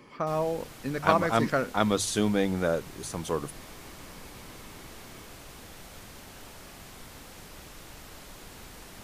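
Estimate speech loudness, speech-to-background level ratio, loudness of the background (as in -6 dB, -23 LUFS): -28.0 LUFS, 18.5 dB, -46.5 LUFS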